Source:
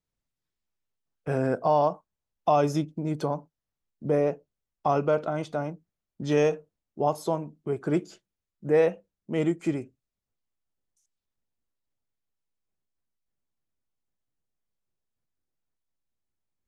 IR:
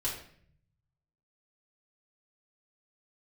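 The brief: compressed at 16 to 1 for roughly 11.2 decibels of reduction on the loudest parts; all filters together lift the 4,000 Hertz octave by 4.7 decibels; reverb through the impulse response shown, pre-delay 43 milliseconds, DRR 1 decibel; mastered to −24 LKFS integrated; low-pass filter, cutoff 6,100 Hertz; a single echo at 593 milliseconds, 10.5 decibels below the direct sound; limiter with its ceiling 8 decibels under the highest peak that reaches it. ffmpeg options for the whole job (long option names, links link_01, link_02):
-filter_complex "[0:a]lowpass=6100,equalizer=frequency=4000:width_type=o:gain=7,acompressor=threshold=-28dB:ratio=16,alimiter=level_in=1.5dB:limit=-24dB:level=0:latency=1,volume=-1.5dB,aecho=1:1:593:0.299,asplit=2[link_01][link_02];[1:a]atrim=start_sample=2205,adelay=43[link_03];[link_02][link_03]afir=irnorm=-1:irlink=0,volume=-5dB[link_04];[link_01][link_04]amix=inputs=2:normalize=0,volume=11dB"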